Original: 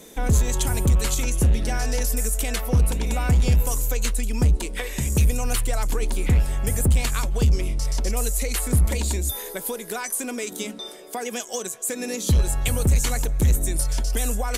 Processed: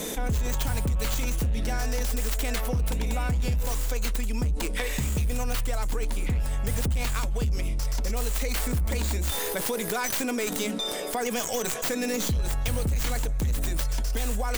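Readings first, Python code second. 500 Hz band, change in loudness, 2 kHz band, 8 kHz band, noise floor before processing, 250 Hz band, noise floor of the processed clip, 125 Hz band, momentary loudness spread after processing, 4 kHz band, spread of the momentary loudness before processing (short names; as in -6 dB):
-2.0 dB, -4.5 dB, -1.0 dB, -6.0 dB, -38 dBFS, -3.5 dB, -31 dBFS, -6.5 dB, 2 LU, -1.0 dB, 8 LU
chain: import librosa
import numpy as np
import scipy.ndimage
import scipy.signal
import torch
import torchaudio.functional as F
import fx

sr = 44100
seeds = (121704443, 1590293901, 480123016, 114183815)

y = fx.tracing_dist(x, sr, depth_ms=0.15)
y = fx.notch(y, sr, hz=370.0, q=12.0)
y = fx.env_flatten(y, sr, amount_pct=70)
y = F.gain(torch.from_numpy(y), -9.0).numpy()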